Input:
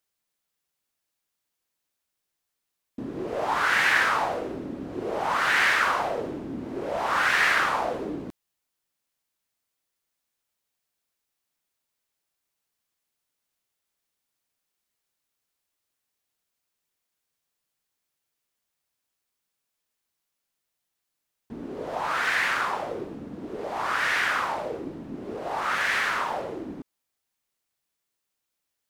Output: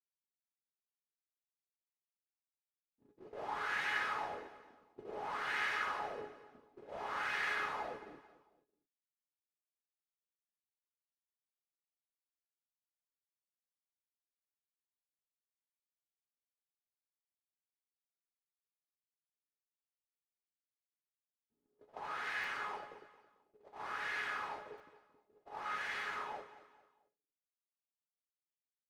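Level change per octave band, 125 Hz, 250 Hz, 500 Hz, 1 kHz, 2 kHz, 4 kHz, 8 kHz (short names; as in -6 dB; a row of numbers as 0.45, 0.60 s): -21.0, -23.0, -17.0, -14.5, -15.0, -15.5, -19.5 dB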